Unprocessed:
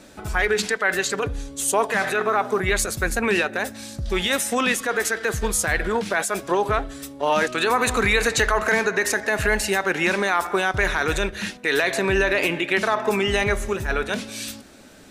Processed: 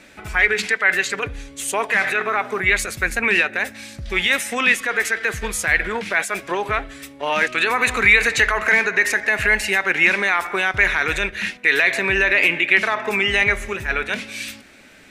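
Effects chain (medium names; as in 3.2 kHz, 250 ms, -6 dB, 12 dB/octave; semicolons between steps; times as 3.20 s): peaking EQ 2.2 kHz +13.5 dB 1 oct; trim -3.5 dB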